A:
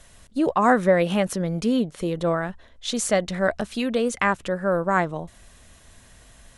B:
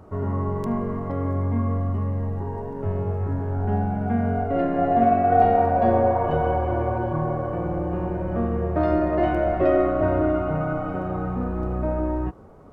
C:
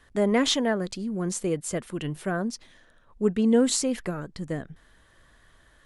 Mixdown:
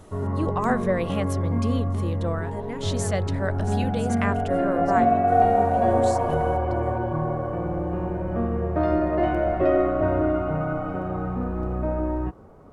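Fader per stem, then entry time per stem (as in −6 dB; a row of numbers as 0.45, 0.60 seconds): −6.5, −1.0, −13.5 decibels; 0.00, 0.00, 2.35 seconds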